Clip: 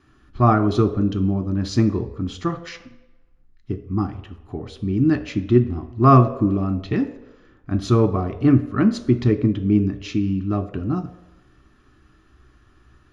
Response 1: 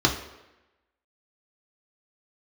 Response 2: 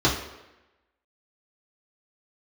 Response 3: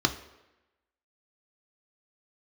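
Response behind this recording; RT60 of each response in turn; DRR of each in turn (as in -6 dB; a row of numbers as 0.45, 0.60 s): 3; 1.0, 1.0, 1.0 s; 0.0, -6.5, 6.0 dB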